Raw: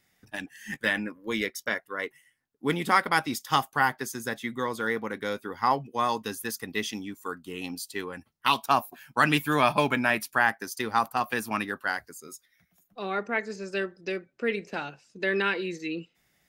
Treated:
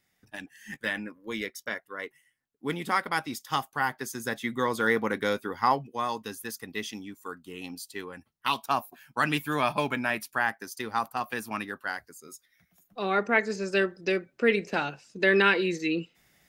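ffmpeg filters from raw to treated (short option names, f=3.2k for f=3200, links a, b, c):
-af "volume=14dB,afade=t=in:st=3.8:d=1.3:silence=0.334965,afade=t=out:st=5.1:d=0.92:silence=0.354813,afade=t=in:st=12.19:d=1.11:silence=0.354813"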